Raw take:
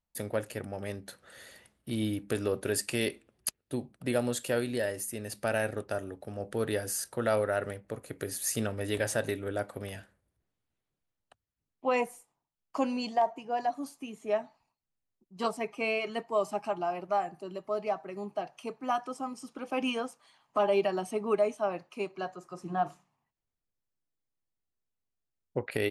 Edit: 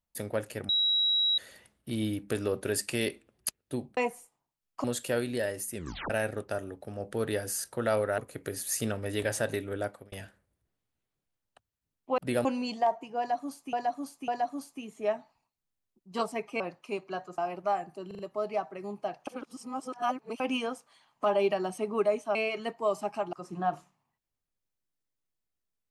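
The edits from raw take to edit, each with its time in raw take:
0:00.69–0:01.38: beep over 3,870 Hz −23 dBFS
0:03.97–0:04.24: swap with 0:11.93–0:12.80
0:05.15: tape stop 0.35 s
0:07.58–0:07.93: remove
0:09.58–0:09.87: fade out
0:13.53–0:14.08: repeat, 3 plays
0:15.85–0:16.83: swap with 0:21.68–0:22.46
0:17.52: stutter 0.04 s, 4 plays
0:18.60–0:19.73: reverse

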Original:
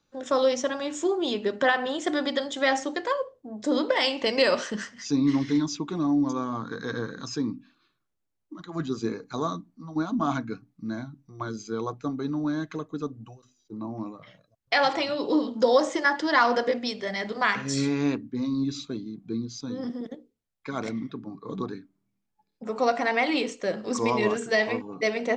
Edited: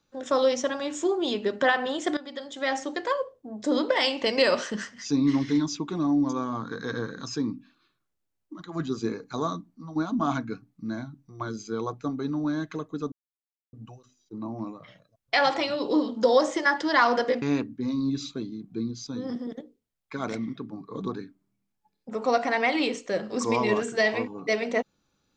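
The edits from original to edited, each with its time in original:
0:02.17–0:03.09: fade in, from −17.5 dB
0:13.12: splice in silence 0.61 s
0:16.81–0:17.96: remove

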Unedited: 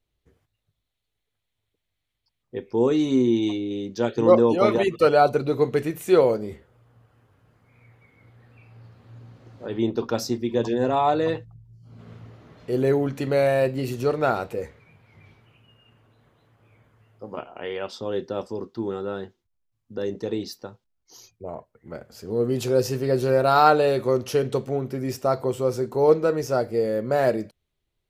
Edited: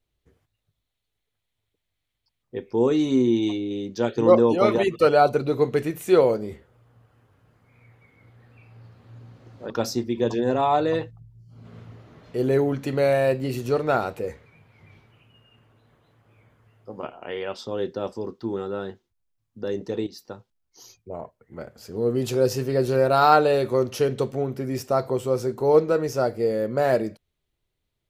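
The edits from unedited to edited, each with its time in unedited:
0:09.70–0:10.04: remove
0:20.41–0:20.66: fade in, from −13.5 dB

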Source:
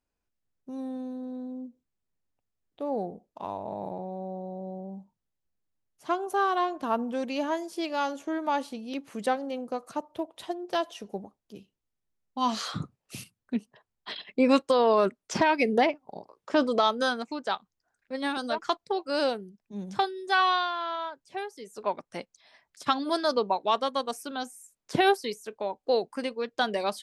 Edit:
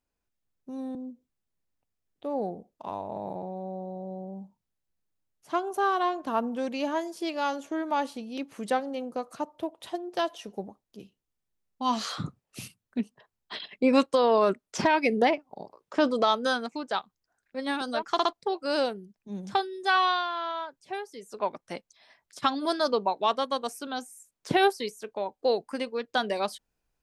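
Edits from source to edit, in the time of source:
0:00.95–0:01.51: remove
0:18.68: stutter 0.06 s, 3 plays

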